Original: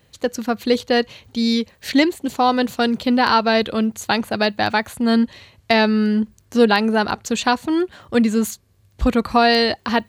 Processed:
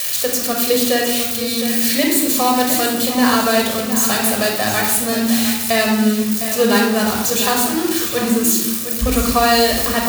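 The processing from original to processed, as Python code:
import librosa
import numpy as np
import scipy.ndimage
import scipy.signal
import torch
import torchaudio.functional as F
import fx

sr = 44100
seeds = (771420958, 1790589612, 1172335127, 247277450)

y = x + 0.5 * 10.0 ** (-10.0 / 20.0) * np.diff(np.sign(x), prepend=np.sign(x[:1]))
y = y + 10.0 ** (-10.5 / 20.0) * np.pad(y, (int(708 * sr / 1000.0), 0))[:len(y)]
y = fx.room_shoebox(y, sr, seeds[0], volume_m3=3800.0, walls='furnished', distance_m=5.9)
y = y * 10.0 ** (-4.5 / 20.0)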